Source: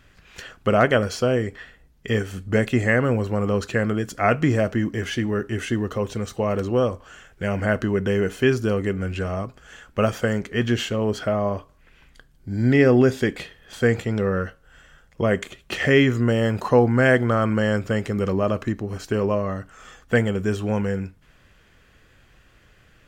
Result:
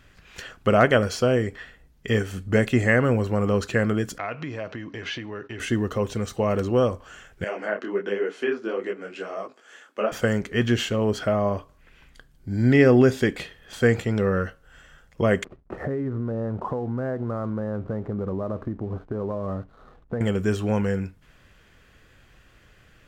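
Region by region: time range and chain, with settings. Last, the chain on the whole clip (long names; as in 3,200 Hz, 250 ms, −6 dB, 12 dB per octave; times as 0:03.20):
0:04.18–0:05.60: downward expander −34 dBFS + downward compressor 4 to 1, threshold −29 dBFS + loudspeaker in its box 130–5,600 Hz, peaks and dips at 210 Hz −7 dB, 370 Hz −3 dB, 1,000 Hz +5 dB, 2,500 Hz +5 dB, 3,900 Hz +6 dB
0:07.44–0:10.12: treble cut that deepens with the level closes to 2,300 Hz, closed at −16 dBFS + high-pass filter 280 Hz 24 dB per octave + micro pitch shift up and down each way 50 cents
0:15.44–0:20.21: low-pass filter 1,200 Hz 24 dB per octave + downward compressor 10 to 1, threshold −24 dBFS + slack as between gear wheels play −50.5 dBFS
whole clip: no processing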